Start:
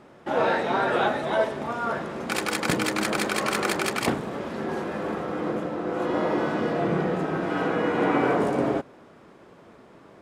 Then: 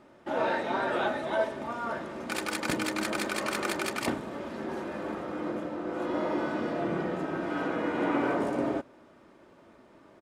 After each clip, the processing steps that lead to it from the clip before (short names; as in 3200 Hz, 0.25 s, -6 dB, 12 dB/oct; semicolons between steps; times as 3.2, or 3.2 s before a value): comb 3.3 ms, depth 34%; gain -6 dB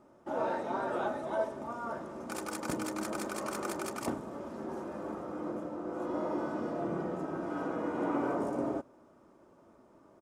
band shelf 2700 Hz -9.5 dB; gain -4 dB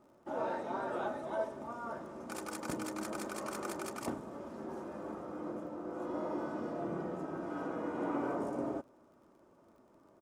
crackle 38/s -56 dBFS; gain -3.5 dB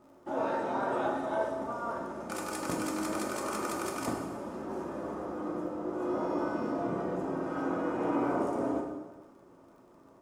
plate-style reverb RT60 1.3 s, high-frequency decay 0.85×, DRR 1 dB; gain +3.5 dB